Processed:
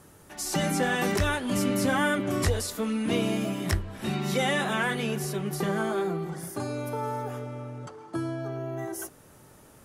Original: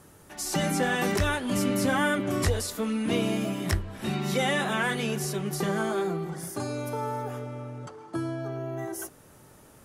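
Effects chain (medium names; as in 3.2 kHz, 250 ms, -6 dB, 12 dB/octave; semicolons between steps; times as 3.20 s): 4.84–7.04 s: dynamic bell 6.4 kHz, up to -4 dB, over -51 dBFS, Q 0.9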